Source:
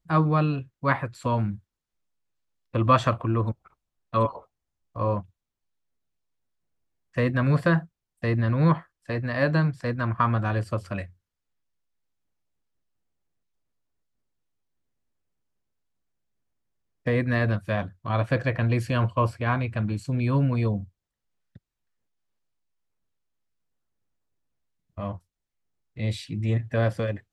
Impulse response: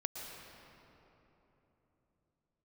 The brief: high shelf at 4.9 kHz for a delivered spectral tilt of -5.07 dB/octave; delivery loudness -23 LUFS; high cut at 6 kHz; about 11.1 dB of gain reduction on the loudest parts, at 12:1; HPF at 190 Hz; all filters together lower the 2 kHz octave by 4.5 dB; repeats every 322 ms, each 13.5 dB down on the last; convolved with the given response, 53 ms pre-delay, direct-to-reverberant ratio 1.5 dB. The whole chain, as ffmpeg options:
-filter_complex "[0:a]highpass=190,lowpass=6000,equalizer=f=2000:t=o:g=-5,highshelf=f=4900:g=-6,acompressor=threshold=0.0501:ratio=12,aecho=1:1:322|644:0.211|0.0444,asplit=2[s0][s1];[1:a]atrim=start_sample=2205,adelay=53[s2];[s1][s2]afir=irnorm=-1:irlink=0,volume=0.794[s3];[s0][s3]amix=inputs=2:normalize=0,volume=2.66"

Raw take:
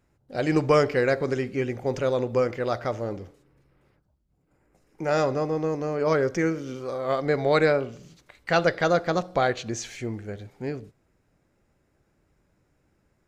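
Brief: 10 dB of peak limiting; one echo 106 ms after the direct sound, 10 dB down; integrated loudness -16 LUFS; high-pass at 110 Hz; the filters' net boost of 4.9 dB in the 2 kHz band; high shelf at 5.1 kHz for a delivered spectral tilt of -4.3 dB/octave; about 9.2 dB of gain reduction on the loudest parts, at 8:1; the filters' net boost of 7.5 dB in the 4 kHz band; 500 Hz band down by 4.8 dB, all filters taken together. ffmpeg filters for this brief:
-af "highpass=110,equalizer=f=500:t=o:g=-6,equalizer=f=2000:t=o:g=5,equalizer=f=4000:t=o:g=6,highshelf=f=5100:g=4,acompressor=threshold=0.0562:ratio=8,alimiter=limit=0.0794:level=0:latency=1,aecho=1:1:106:0.316,volume=7.94"

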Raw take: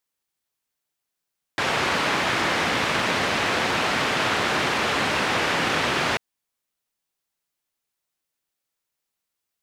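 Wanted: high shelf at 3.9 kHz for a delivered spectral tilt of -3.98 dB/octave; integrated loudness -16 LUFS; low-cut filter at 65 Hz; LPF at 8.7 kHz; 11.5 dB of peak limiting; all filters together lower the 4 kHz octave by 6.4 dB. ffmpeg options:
-af "highpass=65,lowpass=8700,highshelf=f=3900:g=-4.5,equalizer=f=4000:t=o:g=-6,volume=5.31,alimiter=limit=0.398:level=0:latency=1"

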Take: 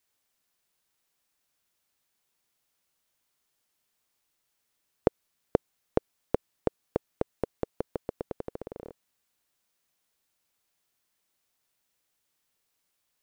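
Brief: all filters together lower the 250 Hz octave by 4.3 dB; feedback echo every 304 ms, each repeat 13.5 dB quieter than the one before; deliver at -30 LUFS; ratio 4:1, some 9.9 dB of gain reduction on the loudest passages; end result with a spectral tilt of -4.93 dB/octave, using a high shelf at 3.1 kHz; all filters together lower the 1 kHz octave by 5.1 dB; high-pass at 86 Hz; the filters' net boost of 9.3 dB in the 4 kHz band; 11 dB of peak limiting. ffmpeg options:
-af "highpass=86,equalizer=f=250:t=o:g=-5.5,equalizer=f=1000:t=o:g=-8,highshelf=f=3100:g=5.5,equalizer=f=4000:t=o:g=8.5,acompressor=threshold=0.0141:ratio=4,alimiter=level_in=1.26:limit=0.0631:level=0:latency=1,volume=0.794,aecho=1:1:304|608:0.211|0.0444,volume=11.9"

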